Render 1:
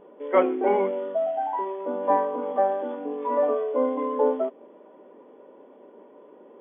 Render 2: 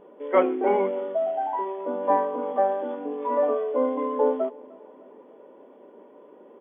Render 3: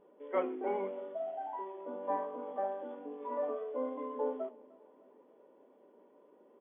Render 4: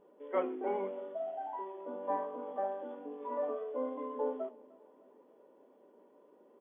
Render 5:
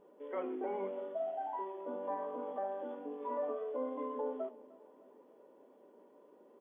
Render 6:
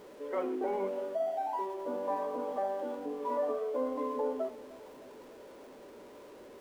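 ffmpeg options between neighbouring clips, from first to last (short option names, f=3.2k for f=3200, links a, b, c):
-filter_complex "[0:a]asplit=2[a][b];[b]adelay=303,lowpass=f=2k:p=1,volume=-23.5dB,asplit=2[c][d];[d]adelay=303,lowpass=f=2k:p=1,volume=0.55,asplit=2[e][f];[f]adelay=303,lowpass=f=2k:p=1,volume=0.55,asplit=2[g][h];[h]adelay=303,lowpass=f=2k:p=1,volume=0.55[i];[a][c][e][g][i]amix=inputs=5:normalize=0"
-af "flanger=delay=4.9:depth=7.8:regen=-82:speed=0.74:shape=triangular,volume=-8.5dB"
-af "equalizer=f=2.2k:w=5.7:g=-2.5"
-af "alimiter=level_in=6dB:limit=-24dB:level=0:latency=1:release=156,volume=-6dB,volume=1dB"
-af "aeval=exprs='val(0)+0.5*0.00178*sgn(val(0))':c=same,volume=4.5dB"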